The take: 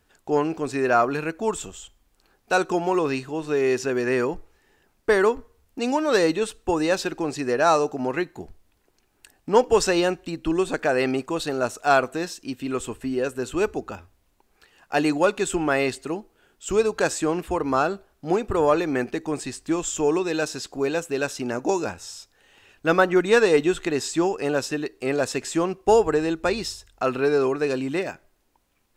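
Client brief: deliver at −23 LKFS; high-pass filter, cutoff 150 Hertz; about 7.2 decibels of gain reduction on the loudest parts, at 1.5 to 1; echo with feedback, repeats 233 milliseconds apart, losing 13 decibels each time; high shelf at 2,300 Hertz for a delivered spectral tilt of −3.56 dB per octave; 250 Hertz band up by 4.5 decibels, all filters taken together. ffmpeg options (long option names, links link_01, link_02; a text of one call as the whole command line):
ffmpeg -i in.wav -af "highpass=150,equalizer=frequency=250:width_type=o:gain=6.5,highshelf=frequency=2300:gain=7,acompressor=threshold=-31dB:ratio=1.5,aecho=1:1:233|466|699:0.224|0.0493|0.0108,volume=3.5dB" out.wav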